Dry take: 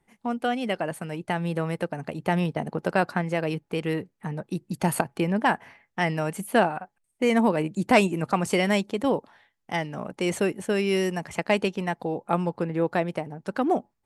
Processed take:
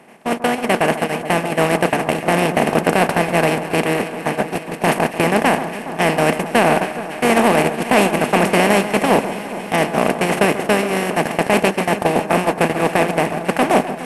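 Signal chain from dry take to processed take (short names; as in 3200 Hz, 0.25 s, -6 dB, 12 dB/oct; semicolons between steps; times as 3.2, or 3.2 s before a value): per-bin compression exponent 0.2; gate -13 dBFS, range -30 dB; limiter -6 dBFS, peak gain reduction 10 dB; in parallel at -8 dB: soft clip -16 dBFS, distortion -10 dB; on the sum: echo with dull and thin repeats by turns 0.139 s, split 1600 Hz, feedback 85%, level -11.5 dB; gain +2 dB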